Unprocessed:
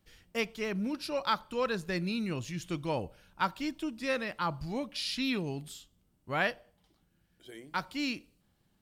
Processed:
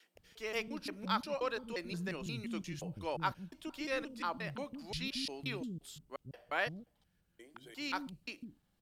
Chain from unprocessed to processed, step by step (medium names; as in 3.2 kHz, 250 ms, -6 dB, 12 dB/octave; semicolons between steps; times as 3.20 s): slices played last to first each 176 ms, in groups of 2; bands offset in time highs, lows 150 ms, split 280 Hz; trim -4.5 dB